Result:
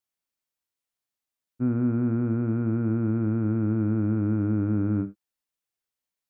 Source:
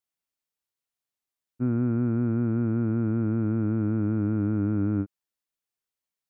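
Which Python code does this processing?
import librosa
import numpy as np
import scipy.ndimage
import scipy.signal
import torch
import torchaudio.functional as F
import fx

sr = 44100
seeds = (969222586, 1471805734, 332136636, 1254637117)

y = fx.rev_gated(x, sr, seeds[0], gate_ms=100, shape='flat', drr_db=10.5)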